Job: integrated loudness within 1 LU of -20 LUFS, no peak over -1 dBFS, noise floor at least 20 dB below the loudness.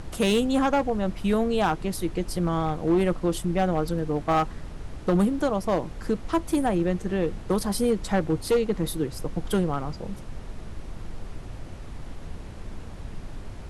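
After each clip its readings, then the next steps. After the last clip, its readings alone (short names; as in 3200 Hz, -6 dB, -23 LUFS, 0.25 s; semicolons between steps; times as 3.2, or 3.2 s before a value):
clipped 1.0%; flat tops at -16.0 dBFS; noise floor -39 dBFS; noise floor target -46 dBFS; loudness -26.0 LUFS; peak -16.0 dBFS; loudness target -20.0 LUFS
-> clip repair -16 dBFS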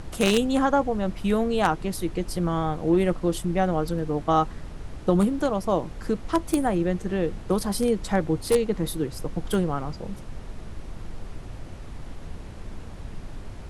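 clipped 0.0%; noise floor -39 dBFS; noise floor target -45 dBFS
-> noise print and reduce 6 dB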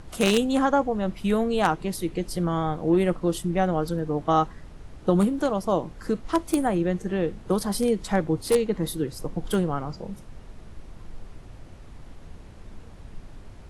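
noise floor -45 dBFS; loudness -25.0 LUFS; peak -7.0 dBFS; loudness target -20.0 LUFS
-> gain +5 dB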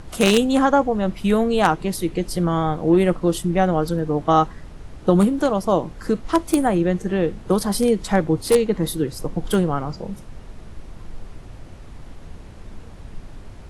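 loudness -20.0 LUFS; peak -2.0 dBFS; noise floor -40 dBFS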